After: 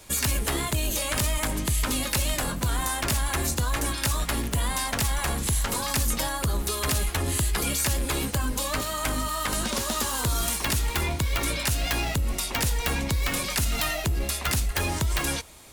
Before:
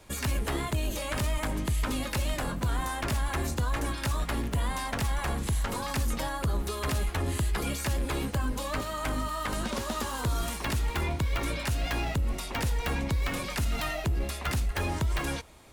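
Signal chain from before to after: treble shelf 3.5 kHz +11 dB; trim +2 dB

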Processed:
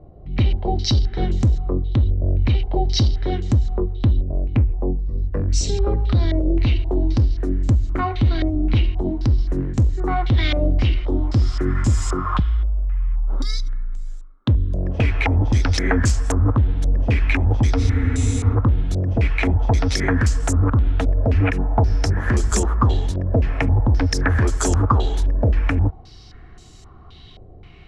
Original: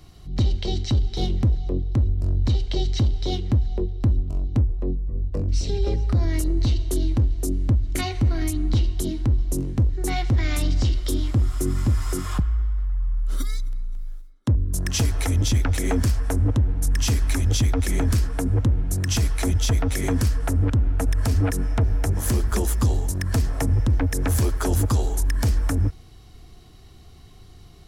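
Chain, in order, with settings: spectral freeze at 17.82 s, 0.71 s; step-sequenced low-pass 3.8 Hz 580–7300 Hz; trim +3 dB

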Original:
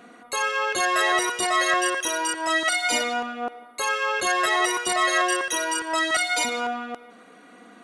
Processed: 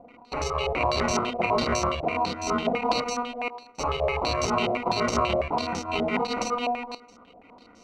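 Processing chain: dynamic bell 480 Hz, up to +4 dB, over -39 dBFS; sample-and-hold 26×; step-sequenced low-pass 12 Hz 670–5900 Hz; trim -5.5 dB

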